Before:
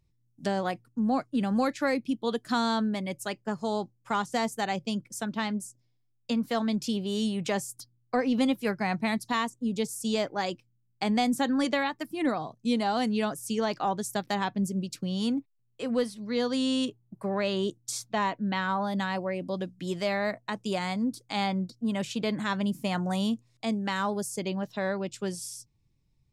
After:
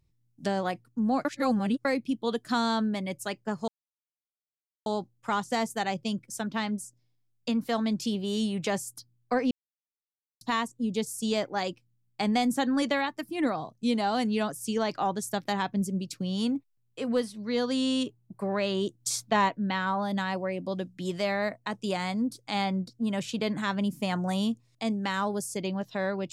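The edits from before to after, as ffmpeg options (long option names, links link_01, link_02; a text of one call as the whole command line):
ffmpeg -i in.wav -filter_complex "[0:a]asplit=8[link_01][link_02][link_03][link_04][link_05][link_06][link_07][link_08];[link_01]atrim=end=1.252[link_09];[link_02]atrim=start=1.248:end=1.852,asetpts=PTS-STARTPTS,areverse[link_10];[link_03]atrim=start=1.848:end=3.68,asetpts=PTS-STARTPTS,afade=type=out:start_time=1.828:duration=0.004:curve=hsin,apad=pad_dur=1.18[link_11];[link_04]atrim=start=3.68:end=8.33,asetpts=PTS-STARTPTS,afade=type=in:duration=0.004:curve=hsin,afade=type=out:start_time=4.646:duration=0.004:curve=hsin[link_12];[link_05]atrim=start=8.33:end=9.23,asetpts=PTS-STARTPTS,volume=0[link_13];[link_06]atrim=start=9.23:end=17.822,asetpts=PTS-STARTPTS,afade=type=in:duration=0.004:curve=hsin[link_14];[link_07]atrim=start=17.818:end=18.312,asetpts=PTS-STARTPTS,volume=4dB[link_15];[link_08]atrim=start=18.308[link_16];[link_09][link_10]acrossfade=duration=0.004:curve1=hsin:curve2=hsin[link_17];[link_11][link_12][link_13][link_14]concat=n=4:v=0:a=1[link_18];[link_17][link_18]acrossfade=duration=0.004:curve1=hsin:curve2=hsin[link_19];[link_19][link_15]acrossfade=duration=0.004:curve1=hsin:curve2=hsin[link_20];[link_20][link_16]acrossfade=duration=0.004:curve1=hsin:curve2=hsin" out.wav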